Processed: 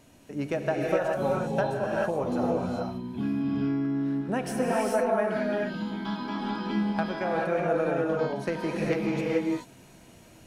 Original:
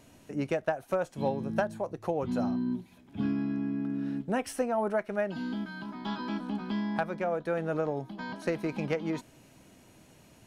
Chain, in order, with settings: gated-style reverb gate 460 ms rising, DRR -3 dB

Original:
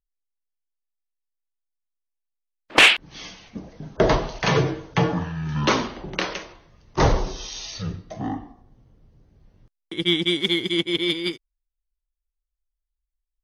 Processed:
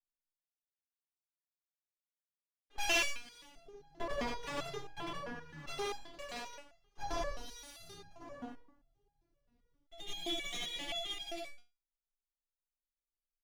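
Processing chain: comb filter that takes the minimum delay 7.1 ms; loudspeakers at several distances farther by 34 m 0 dB, 60 m -1 dB; resonator arpeggio 7.6 Hz 240–810 Hz; trim -4 dB

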